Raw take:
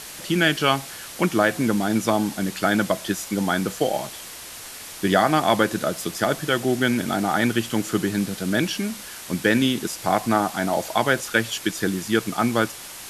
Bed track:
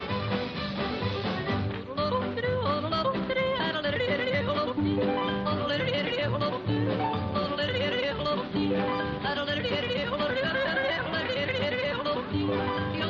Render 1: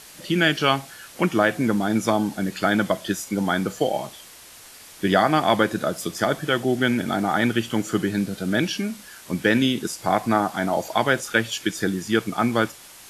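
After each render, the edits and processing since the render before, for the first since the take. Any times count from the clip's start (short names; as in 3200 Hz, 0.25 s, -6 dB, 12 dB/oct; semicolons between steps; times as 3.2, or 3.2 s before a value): noise print and reduce 7 dB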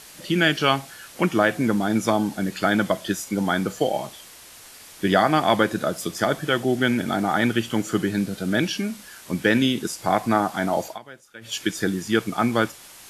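10.85–11.55 dip -22.5 dB, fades 0.14 s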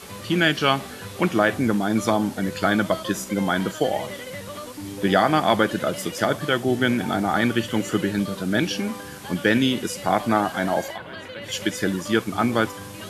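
add bed track -8 dB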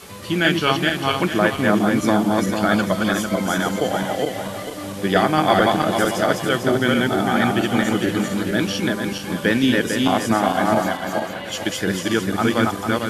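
regenerating reverse delay 0.224 s, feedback 56%, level -1 dB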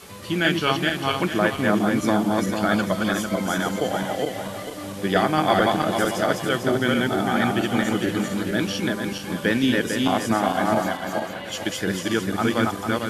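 gain -3 dB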